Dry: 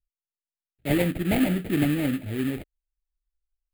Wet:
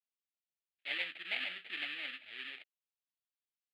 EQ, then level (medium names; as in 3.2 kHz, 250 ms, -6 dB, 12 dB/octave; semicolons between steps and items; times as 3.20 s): ladder band-pass 4.2 kHz, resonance 25%; distance through air 400 m; +17.0 dB